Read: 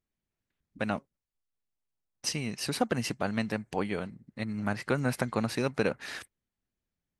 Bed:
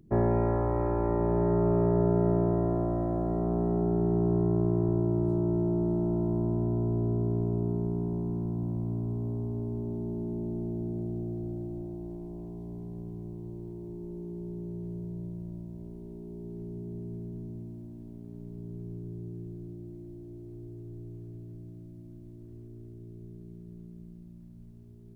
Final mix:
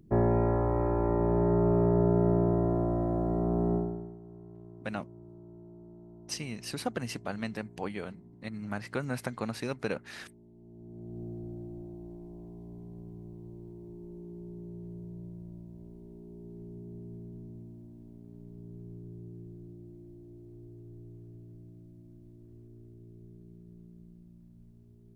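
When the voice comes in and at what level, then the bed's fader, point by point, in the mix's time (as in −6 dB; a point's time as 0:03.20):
4.05 s, −5.0 dB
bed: 0:03.75 0 dB
0:04.19 −23 dB
0:10.53 −23 dB
0:11.23 −5.5 dB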